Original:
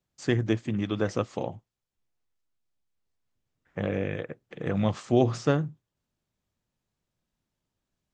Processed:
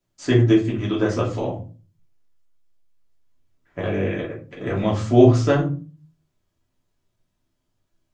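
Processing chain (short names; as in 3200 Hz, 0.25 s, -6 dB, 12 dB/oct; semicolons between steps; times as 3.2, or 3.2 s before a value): shoebox room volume 180 m³, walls furnished, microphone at 2.9 m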